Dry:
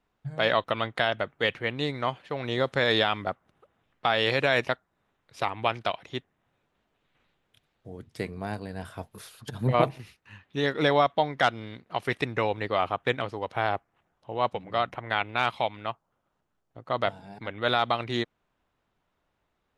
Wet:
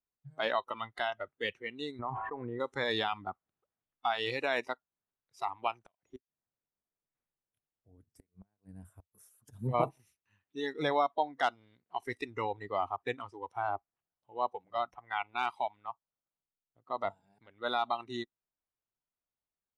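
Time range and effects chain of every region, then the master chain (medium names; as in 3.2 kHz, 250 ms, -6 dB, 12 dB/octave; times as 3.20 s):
1.99–2.60 s: low-pass 1.9 kHz 24 dB/octave + feedback comb 110 Hz, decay 1.5 s, mix 40% + level flattener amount 100%
5.74–9.51 s: peaking EQ 3.9 kHz -11 dB 1.4 oct + inverted gate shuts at -22 dBFS, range -27 dB
whole clip: spectral noise reduction 16 dB; dynamic bell 870 Hz, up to +5 dB, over -39 dBFS, Q 2.1; trim -8.5 dB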